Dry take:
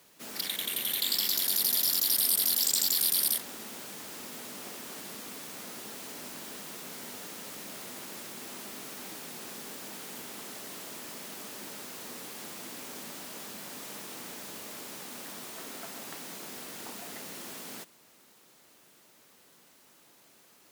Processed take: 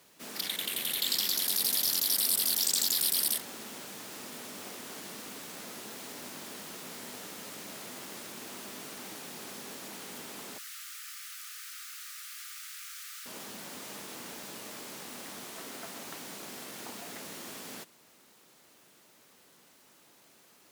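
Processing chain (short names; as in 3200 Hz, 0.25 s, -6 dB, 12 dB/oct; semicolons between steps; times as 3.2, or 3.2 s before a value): 10.58–13.26 Chebyshev high-pass 1200 Hz, order 8; Doppler distortion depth 0.19 ms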